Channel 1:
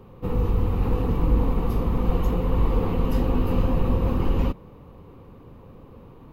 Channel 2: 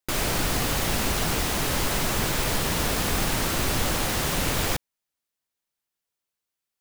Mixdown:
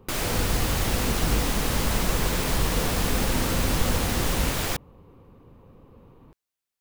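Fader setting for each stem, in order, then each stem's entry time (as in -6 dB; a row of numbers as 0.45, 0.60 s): -5.5, -2.0 dB; 0.00, 0.00 s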